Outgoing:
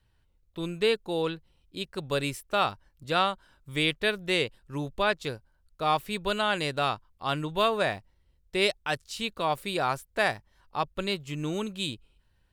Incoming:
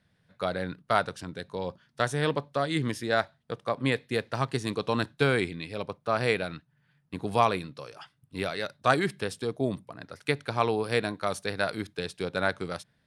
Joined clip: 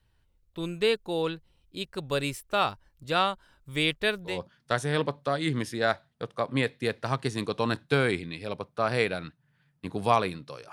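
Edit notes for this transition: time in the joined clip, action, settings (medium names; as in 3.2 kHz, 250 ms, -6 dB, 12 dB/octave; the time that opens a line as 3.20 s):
outgoing
4.31 s: go over to incoming from 1.60 s, crossfade 0.16 s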